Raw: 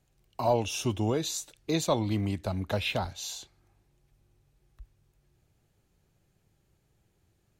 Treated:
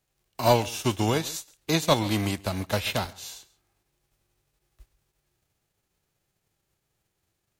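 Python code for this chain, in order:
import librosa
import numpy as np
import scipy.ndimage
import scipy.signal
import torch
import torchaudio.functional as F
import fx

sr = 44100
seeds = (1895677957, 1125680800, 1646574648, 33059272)

y = fx.envelope_flatten(x, sr, power=0.6)
y = y + 10.0 ** (-16.5 / 20.0) * np.pad(y, (int(137 * sr / 1000.0), 0))[:len(y)]
y = fx.upward_expand(y, sr, threshold_db=-48.0, expansion=1.5)
y = F.gain(torch.from_numpy(y), 6.0).numpy()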